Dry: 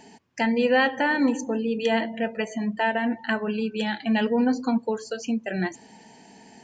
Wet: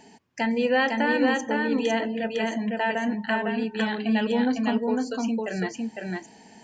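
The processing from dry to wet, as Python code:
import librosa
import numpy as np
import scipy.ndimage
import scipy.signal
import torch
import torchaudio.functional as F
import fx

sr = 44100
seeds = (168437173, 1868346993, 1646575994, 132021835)

y = x + 10.0 ** (-3.0 / 20.0) * np.pad(x, (int(505 * sr / 1000.0), 0))[:len(x)]
y = y * 10.0 ** (-2.0 / 20.0)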